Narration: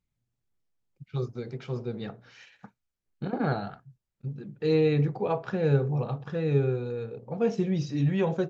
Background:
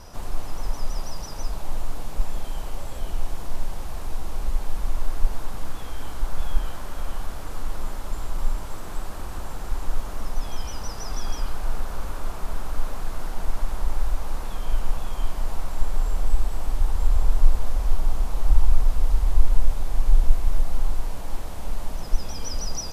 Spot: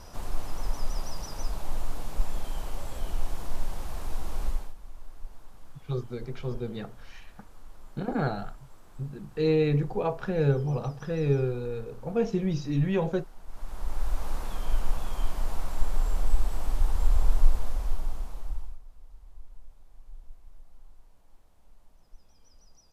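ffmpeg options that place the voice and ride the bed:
-filter_complex "[0:a]adelay=4750,volume=-0.5dB[a];[1:a]volume=13.5dB,afade=t=out:st=4.46:d=0.28:silence=0.149624,afade=t=in:st=13.46:d=0.78:silence=0.149624,afade=t=out:st=17.3:d=1.49:silence=0.0473151[b];[a][b]amix=inputs=2:normalize=0"

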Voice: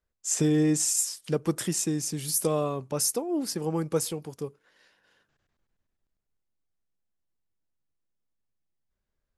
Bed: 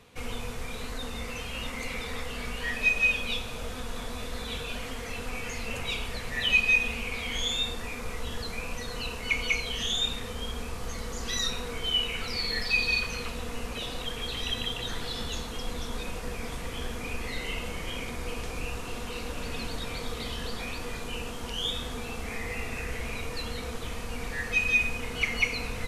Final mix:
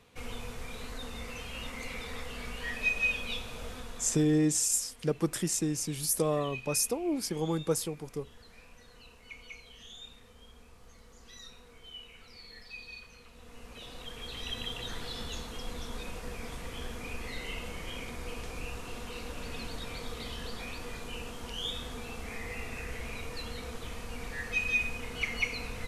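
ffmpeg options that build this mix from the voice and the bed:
-filter_complex "[0:a]adelay=3750,volume=-2.5dB[a];[1:a]volume=10dB,afade=t=out:st=3.69:d=0.71:silence=0.177828,afade=t=in:st=13.29:d=1.48:silence=0.177828[b];[a][b]amix=inputs=2:normalize=0"

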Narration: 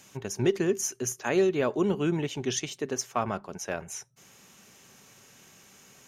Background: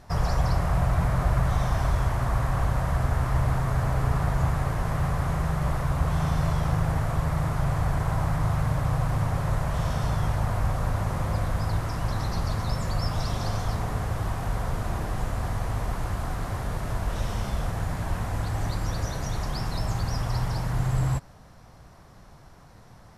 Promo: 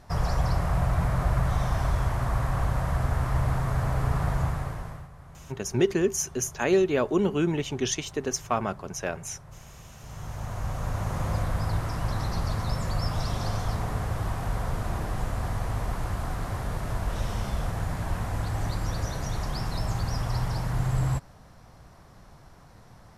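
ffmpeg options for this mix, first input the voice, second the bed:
-filter_complex "[0:a]adelay=5350,volume=2dB[a];[1:a]volume=19dB,afade=t=out:st=4.34:d=0.74:silence=0.1,afade=t=in:st=9.99:d=1.29:silence=0.0944061[b];[a][b]amix=inputs=2:normalize=0"

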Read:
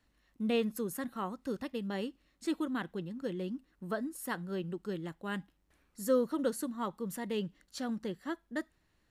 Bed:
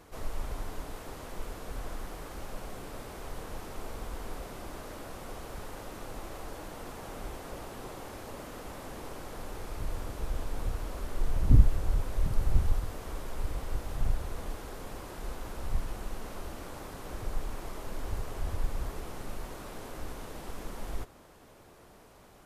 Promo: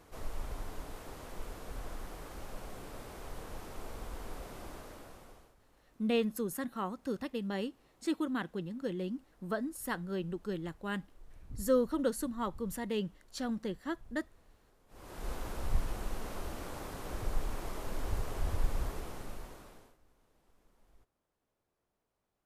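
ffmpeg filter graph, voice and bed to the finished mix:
-filter_complex "[0:a]adelay=5600,volume=0.5dB[a];[1:a]volume=22dB,afade=t=out:st=4.66:d=0.89:silence=0.0794328,afade=t=in:st=14.88:d=0.44:silence=0.0501187,afade=t=out:st=18.79:d=1.18:silence=0.0354813[b];[a][b]amix=inputs=2:normalize=0"

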